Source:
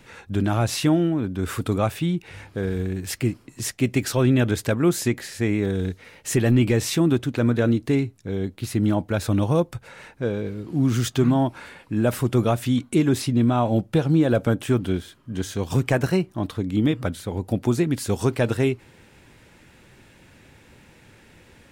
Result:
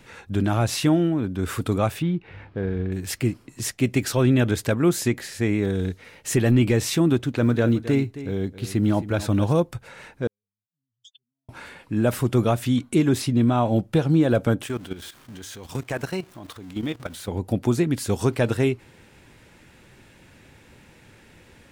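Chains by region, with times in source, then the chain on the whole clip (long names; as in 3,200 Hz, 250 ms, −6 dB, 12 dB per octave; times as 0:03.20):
0:02.02–0:02.92: variable-slope delta modulation 64 kbit/s + high-frequency loss of the air 340 metres
0:07.16–0:09.53: high-shelf EQ 12,000 Hz −6 dB + floating-point word with a short mantissa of 6 bits + single-tap delay 267 ms −14 dB
0:10.27–0:11.49: expanding power law on the bin magnitudes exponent 3.6 + inverse Chebyshev high-pass filter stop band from 860 Hz, stop band 60 dB + downward compressor 12 to 1, threshold −46 dBFS
0:14.67–0:17.28: converter with a step at zero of −37 dBFS + low-shelf EQ 420 Hz −8 dB + output level in coarse steps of 13 dB
whole clip: no processing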